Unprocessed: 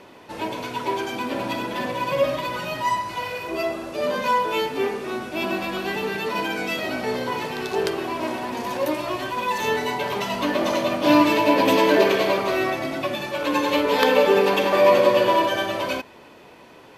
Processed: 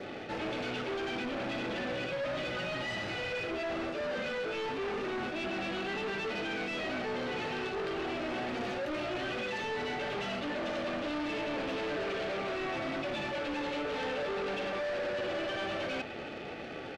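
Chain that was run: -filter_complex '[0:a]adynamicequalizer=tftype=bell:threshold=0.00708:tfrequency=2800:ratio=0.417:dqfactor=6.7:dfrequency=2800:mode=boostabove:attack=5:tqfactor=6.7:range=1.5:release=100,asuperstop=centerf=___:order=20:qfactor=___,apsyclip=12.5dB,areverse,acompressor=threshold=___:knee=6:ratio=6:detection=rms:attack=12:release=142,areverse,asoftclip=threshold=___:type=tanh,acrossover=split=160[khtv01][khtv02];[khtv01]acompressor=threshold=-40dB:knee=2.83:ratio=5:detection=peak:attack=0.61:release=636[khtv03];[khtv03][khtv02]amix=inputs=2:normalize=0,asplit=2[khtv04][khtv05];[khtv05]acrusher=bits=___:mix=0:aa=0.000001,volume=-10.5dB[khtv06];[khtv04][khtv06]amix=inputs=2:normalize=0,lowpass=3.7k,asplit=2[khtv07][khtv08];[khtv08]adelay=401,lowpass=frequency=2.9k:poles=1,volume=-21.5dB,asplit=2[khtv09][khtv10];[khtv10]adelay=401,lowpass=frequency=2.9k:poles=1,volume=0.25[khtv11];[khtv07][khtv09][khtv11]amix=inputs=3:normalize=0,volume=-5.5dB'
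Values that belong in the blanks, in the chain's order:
1000, 4.4, -22dB, -29.5dB, 4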